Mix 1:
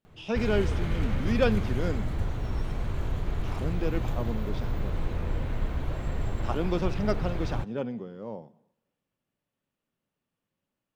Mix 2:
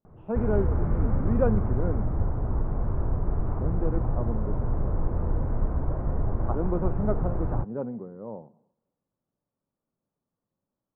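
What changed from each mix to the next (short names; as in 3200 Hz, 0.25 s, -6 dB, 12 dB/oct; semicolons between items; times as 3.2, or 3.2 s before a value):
background +3.5 dB; master: add LPF 1200 Hz 24 dB/oct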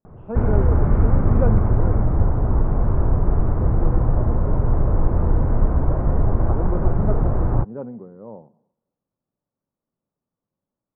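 background +8.5 dB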